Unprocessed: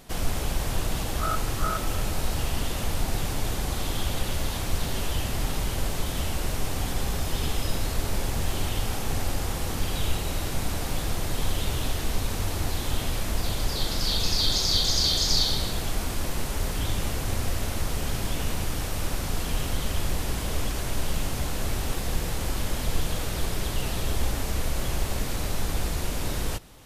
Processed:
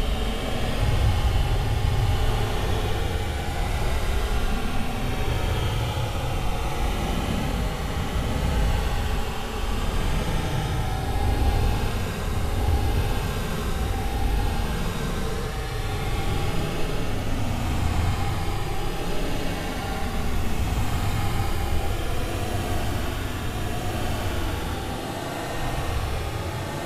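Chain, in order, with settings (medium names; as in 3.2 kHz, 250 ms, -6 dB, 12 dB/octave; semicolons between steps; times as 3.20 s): spring tank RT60 3.6 s, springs 47/54 ms, chirp 25 ms, DRR -7 dB; granulator 100 ms, grains 20 per s, pitch spread up and down by 0 st; Paulstretch 31×, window 0.05 s, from 8.82 s; trim -3 dB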